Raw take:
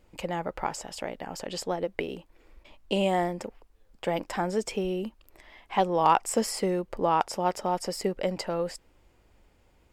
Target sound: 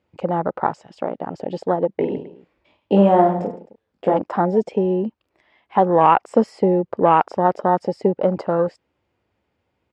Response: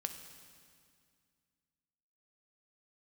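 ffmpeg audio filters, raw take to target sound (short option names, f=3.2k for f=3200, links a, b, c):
-filter_complex "[0:a]highpass=f=79:w=0.5412,highpass=f=79:w=1.3066,afwtdn=0.0224,lowpass=4.1k,asplit=3[a][b][c];[a]afade=t=out:st=2:d=0.02[d];[b]aecho=1:1:20|50|95|162.5|263.8:0.631|0.398|0.251|0.158|0.1,afade=t=in:st=2:d=0.02,afade=t=out:st=4.16:d=0.02[e];[c]afade=t=in:st=4.16:d=0.02[f];[d][e][f]amix=inputs=3:normalize=0,alimiter=level_in=12.5dB:limit=-1dB:release=50:level=0:latency=1,volume=-2dB"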